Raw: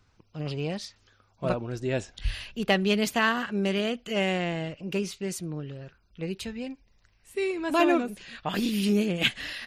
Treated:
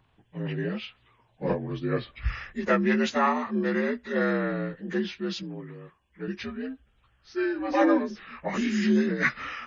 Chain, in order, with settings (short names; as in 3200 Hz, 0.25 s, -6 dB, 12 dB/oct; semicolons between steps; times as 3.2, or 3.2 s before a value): inharmonic rescaling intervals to 82%; 5.43–6.28 low shelf 210 Hz -9.5 dB; gain +2 dB